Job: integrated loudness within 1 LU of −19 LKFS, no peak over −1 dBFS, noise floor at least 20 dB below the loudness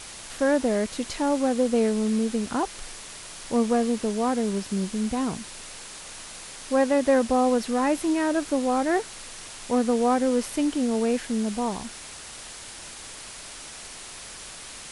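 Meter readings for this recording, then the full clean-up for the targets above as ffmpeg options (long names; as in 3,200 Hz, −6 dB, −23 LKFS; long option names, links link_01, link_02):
background noise floor −41 dBFS; target noise floor −45 dBFS; integrated loudness −25.0 LKFS; sample peak −9.5 dBFS; target loudness −19.0 LKFS
→ -af "afftdn=noise_reduction=6:noise_floor=-41"
-af "volume=6dB"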